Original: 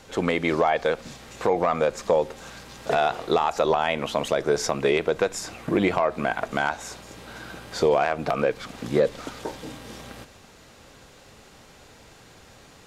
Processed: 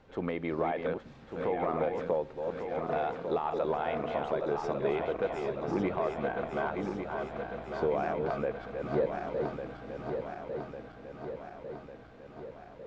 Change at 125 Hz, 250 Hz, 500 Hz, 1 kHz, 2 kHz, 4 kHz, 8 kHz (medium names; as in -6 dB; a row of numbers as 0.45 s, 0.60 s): -6.0 dB, -6.5 dB, -7.0 dB, -8.0 dB, -11.5 dB, -17.5 dB, under -25 dB